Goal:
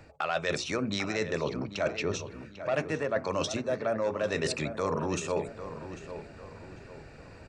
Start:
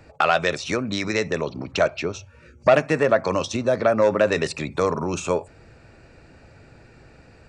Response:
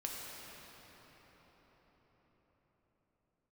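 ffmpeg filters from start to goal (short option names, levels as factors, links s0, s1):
-filter_complex "[0:a]bandreject=f=60:t=h:w=6,bandreject=f=120:t=h:w=6,bandreject=f=180:t=h:w=6,bandreject=f=240:t=h:w=6,bandreject=f=300:t=h:w=6,bandreject=f=360:t=h:w=6,bandreject=f=420:t=h:w=6,bandreject=f=480:t=h:w=6,areverse,acompressor=threshold=0.0447:ratio=6,areverse,asplit=2[s0][s1];[s1]adelay=796,lowpass=f=2700:p=1,volume=0.282,asplit=2[s2][s3];[s3]adelay=796,lowpass=f=2700:p=1,volume=0.41,asplit=2[s4][s5];[s5]adelay=796,lowpass=f=2700:p=1,volume=0.41,asplit=2[s6][s7];[s7]adelay=796,lowpass=f=2700:p=1,volume=0.41[s8];[s0][s2][s4][s6][s8]amix=inputs=5:normalize=0"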